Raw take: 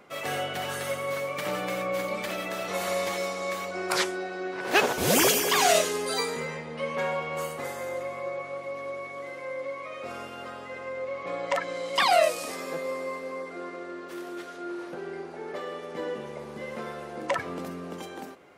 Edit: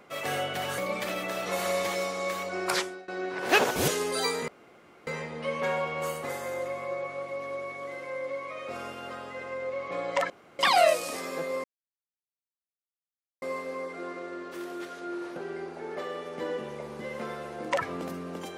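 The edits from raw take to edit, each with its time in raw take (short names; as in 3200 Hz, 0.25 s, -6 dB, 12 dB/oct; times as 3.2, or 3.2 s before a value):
0.78–2 cut
3.88–4.3 fade out, to -19.5 dB
5.1–5.82 cut
6.42 insert room tone 0.59 s
11.65–11.94 room tone
12.99 insert silence 1.78 s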